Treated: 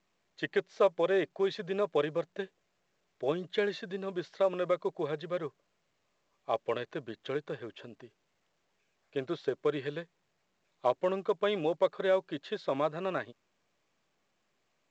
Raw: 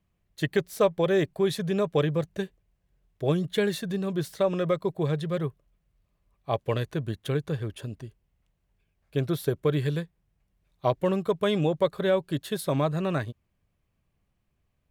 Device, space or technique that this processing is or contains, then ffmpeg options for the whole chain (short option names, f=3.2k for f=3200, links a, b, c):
telephone: -af "highpass=350,lowpass=3.4k,volume=-2.5dB" -ar 16000 -c:a pcm_mulaw